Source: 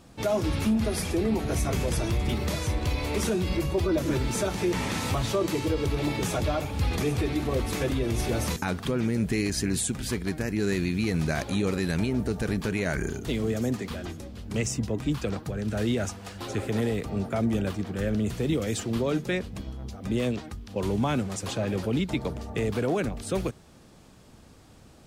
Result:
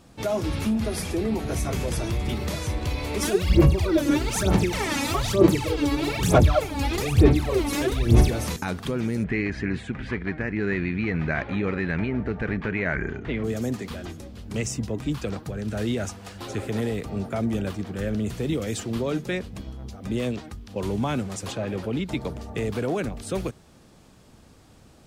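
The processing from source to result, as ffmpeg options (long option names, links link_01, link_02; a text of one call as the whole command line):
ffmpeg -i in.wav -filter_complex "[0:a]asplit=3[link_01][link_02][link_03];[link_01]afade=type=out:start_time=3.2:duration=0.02[link_04];[link_02]aphaser=in_gain=1:out_gain=1:delay=3.6:decay=0.8:speed=1.1:type=sinusoidal,afade=type=in:start_time=3.2:duration=0.02,afade=type=out:start_time=8.29:duration=0.02[link_05];[link_03]afade=type=in:start_time=8.29:duration=0.02[link_06];[link_04][link_05][link_06]amix=inputs=3:normalize=0,asplit=3[link_07][link_08][link_09];[link_07]afade=type=out:start_time=9.23:duration=0.02[link_10];[link_08]lowpass=frequency=2000:width_type=q:width=2.2,afade=type=in:start_time=9.23:duration=0.02,afade=type=out:start_time=13.43:duration=0.02[link_11];[link_09]afade=type=in:start_time=13.43:duration=0.02[link_12];[link_10][link_11][link_12]amix=inputs=3:normalize=0,asettb=1/sr,asplit=3[link_13][link_14][link_15];[link_13]atrim=end=21.524[link_16];[link_14]atrim=start=21.52:end=22.06,asetpts=PTS-STARTPTS,afade=type=in:duration=0.004:curve=qsin,afade=type=out:start_time=0.536:duration=0.004:curve=qsin,bass=frequency=250:gain=-2,treble=frequency=4000:gain=-6[link_17];[link_15]atrim=start=22.056[link_18];[link_16][link_17]acrossfade=duration=0.004:curve1=hsin:curve2=qsin[link_19];[link_19][link_18]acrossfade=duration=0.004:curve1=qsin:curve2=hsin" out.wav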